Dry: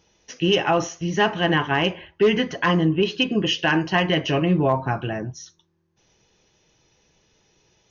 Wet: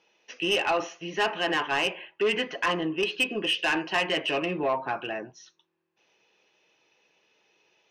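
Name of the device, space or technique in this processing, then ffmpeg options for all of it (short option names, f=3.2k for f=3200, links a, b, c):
intercom: -af "highpass=390,lowpass=3.8k,equalizer=f=2.6k:t=o:w=0.27:g=8,asoftclip=type=tanh:threshold=-15.5dB,volume=-2.5dB"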